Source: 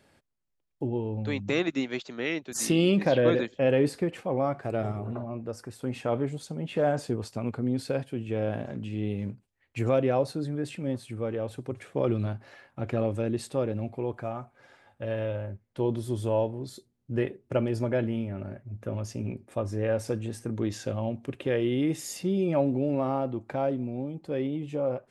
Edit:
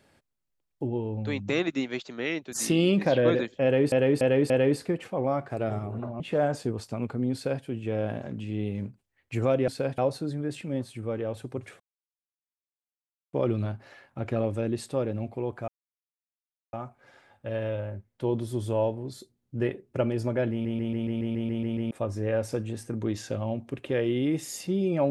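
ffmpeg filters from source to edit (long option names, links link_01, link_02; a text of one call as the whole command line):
ffmpeg -i in.wav -filter_complex "[0:a]asplit=19[link_01][link_02][link_03][link_04][link_05][link_06][link_07][link_08][link_09][link_10][link_11][link_12][link_13][link_14][link_15][link_16][link_17][link_18][link_19];[link_01]atrim=end=3.922[link_20];[link_02]atrim=start=3.628:end=3.922[link_21];[link_03]atrim=start=3.628:end=3.922[link_22];[link_04]atrim=start=3.628:end=5.332[link_23];[link_05]atrim=start=6.638:end=10.122[link_24];[link_06]atrim=start=7.778:end=8.082[link_25];[link_07]atrim=start=10.118:end=11.94,asetpts=PTS-STARTPTS,afade=type=out:start_time=1.818:duration=0.004:curve=hsin,apad=pad_dur=1.53[link_26];[link_08]atrim=start=11.94:end=14.29,asetpts=PTS-STARTPTS,afade=type=in:duration=0.004:curve=hsin,afade=type=out:start_time=2.346:duration=0.004:curve=hsin,apad=pad_dur=1.05[link_27];[link_09]atrim=start=14.29:end=18.212,asetpts=PTS-STARTPTS,afade=type=in:duration=0.004:curve=hsin[link_28];[link_10]atrim=start=18.068:end=18.212[link_29];[link_11]atrim=start=18.068:end=18.212[link_30];[link_12]atrim=start=18.068:end=18.212[link_31];[link_13]atrim=start=18.068:end=18.212[link_32];[link_14]atrim=start=18.068:end=18.212[link_33];[link_15]atrim=start=18.068:end=18.212[link_34];[link_16]atrim=start=18.068:end=18.212[link_35];[link_17]atrim=start=18.068:end=18.212[link_36];[link_18]atrim=start=18.068:end=18.212[link_37];[link_19]atrim=start=19.468[link_38];[link_20][link_21]acrossfade=duration=0.004:curve1=hsin:curve2=hsin[link_39];[link_39][link_22]acrossfade=duration=0.004:curve1=hsin:curve2=hsin[link_40];[link_40][link_23]acrossfade=duration=0.004:curve1=hsin:curve2=hsin[link_41];[link_41][link_24]acrossfade=duration=0.004:curve1=hsin:curve2=hsin[link_42];[link_42][link_25]acrossfade=duration=0.004:curve1=hsin:curve2=hsin[link_43];[link_26][link_27][link_28]concat=n=3:v=0:a=1[link_44];[link_43][link_44]acrossfade=duration=0.004:curve1=hsin:curve2=hsin[link_45];[link_45][link_29]acrossfade=duration=0.004:curve1=hsin:curve2=hsin[link_46];[link_46][link_30]acrossfade=duration=0.004:curve1=hsin:curve2=hsin[link_47];[link_47][link_31]acrossfade=duration=0.004:curve1=hsin:curve2=hsin[link_48];[link_48][link_32]acrossfade=duration=0.004:curve1=hsin:curve2=hsin[link_49];[link_49][link_33]acrossfade=duration=0.004:curve1=hsin:curve2=hsin[link_50];[link_50][link_34]acrossfade=duration=0.004:curve1=hsin:curve2=hsin[link_51];[link_51][link_35]acrossfade=duration=0.004:curve1=hsin:curve2=hsin[link_52];[link_52][link_36]acrossfade=duration=0.004:curve1=hsin:curve2=hsin[link_53];[link_53][link_37]acrossfade=duration=0.004:curve1=hsin:curve2=hsin[link_54];[link_54][link_38]acrossfade=duration=0.004:curve1=hsin:curve2=hsin" out.wav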